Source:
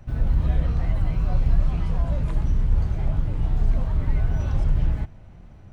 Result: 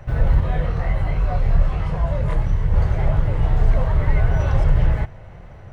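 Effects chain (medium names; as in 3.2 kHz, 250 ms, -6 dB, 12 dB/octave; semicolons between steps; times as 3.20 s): graphic EQ 125/250/500/1000/2000 Hz +4/-7/+9/+4/+8 dB; 0.40–2.74 s: chorus voices 2, 1.3 Hz, delay 23 ms, depth 3 ms; band-stop 2.4 kHz, Q 18; trim +4 dB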